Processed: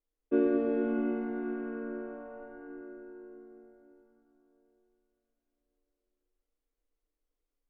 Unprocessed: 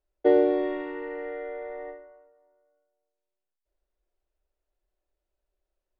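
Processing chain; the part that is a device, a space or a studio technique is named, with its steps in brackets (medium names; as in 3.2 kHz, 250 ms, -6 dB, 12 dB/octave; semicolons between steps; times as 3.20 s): slowed and reverbed (tape speed -22%; reverberation RT60 4.5 s, pre-delay 67 ms, DRR 1 dB); trim -7 dB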